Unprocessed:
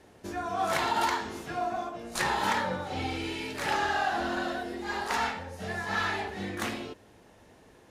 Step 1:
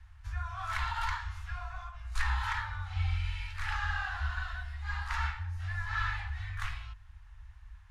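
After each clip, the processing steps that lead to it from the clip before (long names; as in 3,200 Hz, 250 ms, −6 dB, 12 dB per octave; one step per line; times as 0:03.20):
inverse Chebyshev band-stop filter 200–440 Hz, stop band 70 dB
spectral tilt −4.5 dB per octave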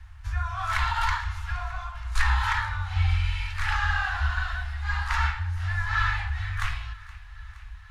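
feedback echo with a high-pass in the loop 470 ms, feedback 73%, high-pass 660 Hz, level −19.5 dB
level +8 dB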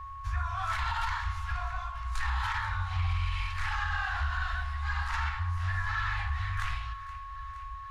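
brickwall limiter −20 dBFS, peak gain reduction 10.5 dB
steady tone 1,100 Hz −38 dBFS
highs frequency-modulated by the lows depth 0.14 ms
level −2.5 dB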